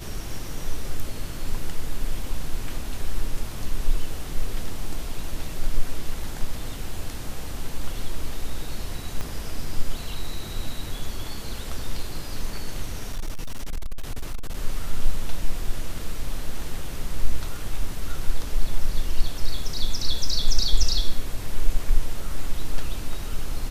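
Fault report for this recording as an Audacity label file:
9.210000	9.210000	click −16 dBFS
13.120000	14.550000	clipping −23 dBFS

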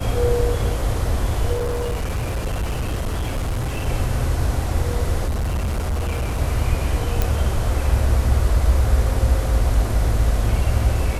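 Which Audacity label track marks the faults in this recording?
1.530000	3.880000	clipping −19.5 dBFS
5.270000	6.380000	clipping −19 dBFS
7.220000	7.220000	click

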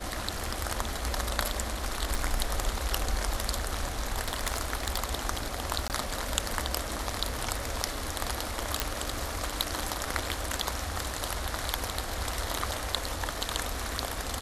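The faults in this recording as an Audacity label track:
2.150000	2.150000	click
4.240000	4.980000	clipping −20.5 dBFS
5.880000	5.900000	drop-out 18 ms
8.800000	8.800000	click −7 dBFS

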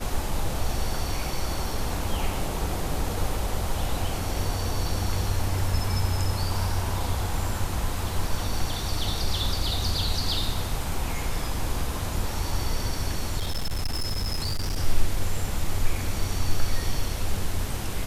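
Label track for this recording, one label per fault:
13.390000	14.760000	clipping −23 dBFS

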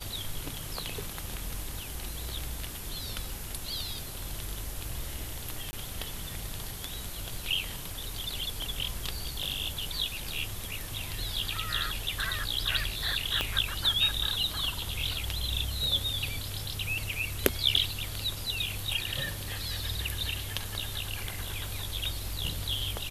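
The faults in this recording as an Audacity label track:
5.710000	5.730000	drop-out 20 ms
13.410000	13.410000	click −12 dBFS

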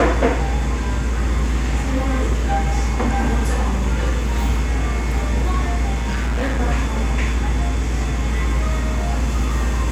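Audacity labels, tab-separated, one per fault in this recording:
5.940000	6.600000	clipping −17 dBFS

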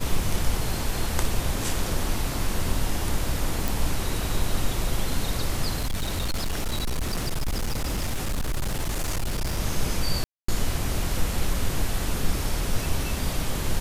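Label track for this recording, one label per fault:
3.680000	3.680000	click
5.780000	9.600000	clipping −22.5 dBFS
10.240000	10.480000	drop-out 244 ms

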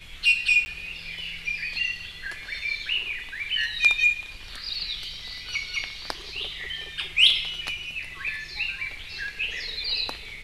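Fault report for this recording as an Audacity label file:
0.650000	0.660000	drop-out 10 ms

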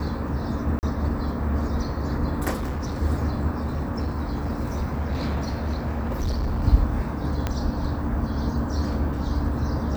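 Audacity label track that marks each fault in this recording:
0.790000	0.830000	drop-out 39 ms
2.560000	3.020000	clipping −24.5 dBFS
3.540000	6.650000	clipping −21.5 dBFS
7.470000	7.470000	click −11 dBFS

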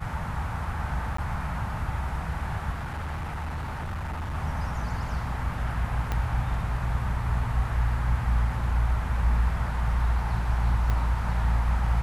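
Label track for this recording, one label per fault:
1.170000	1.180000	drop-out 14 ms
2.720000	4.350000	clipping −29 dBFS
6.120000	6.120000	click −15 dBFS
10.900000	10.900000	click −16 dBFS

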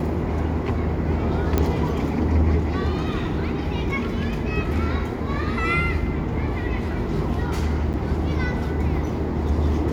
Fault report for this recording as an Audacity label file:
1.580000	1.580000	click −7 dBFS
7.930000	7.940000	drop-out 9 ms

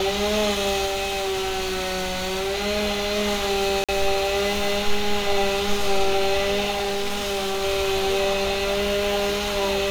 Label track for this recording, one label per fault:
0.850000	2.560000	clipping −22 dBFS
3.840000	3.890000	drop-out 46 ms
6.710000	7.650000	clipping −22 dBFS

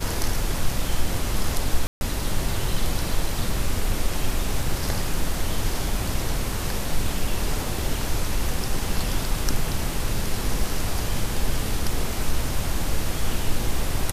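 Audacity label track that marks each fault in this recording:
1.870000	2.010000	drop-out 141 ms

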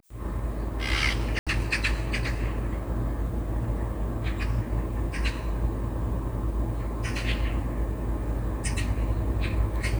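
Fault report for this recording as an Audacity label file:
1.390000	1.470000	drop-out 76 ms

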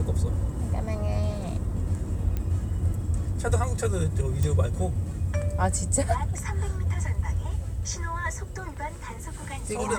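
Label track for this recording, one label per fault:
2.370000	2.370000	click −17 dBFS
4.430000	4.430000	click

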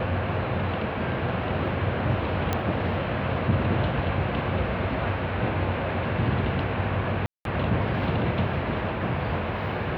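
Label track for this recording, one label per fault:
2.530000	2.530000	click −11 dBFS
7.260000	7.450000	drop-out 192 ms

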